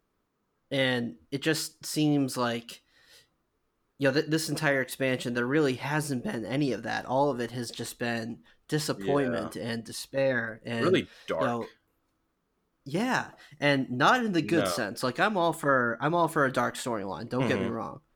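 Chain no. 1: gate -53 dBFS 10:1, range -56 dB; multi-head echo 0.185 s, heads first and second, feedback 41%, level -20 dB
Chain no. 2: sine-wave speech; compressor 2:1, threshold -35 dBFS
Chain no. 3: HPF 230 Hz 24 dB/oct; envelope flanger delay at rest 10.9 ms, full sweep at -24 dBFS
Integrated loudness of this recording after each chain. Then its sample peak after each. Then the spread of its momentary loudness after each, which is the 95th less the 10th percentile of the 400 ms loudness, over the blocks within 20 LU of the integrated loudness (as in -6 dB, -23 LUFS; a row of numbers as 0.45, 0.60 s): -28.5, -35.5, -32.0 LUFS; -8.5, -20.0, -12.5 dBFS; 9, 8, 11 LU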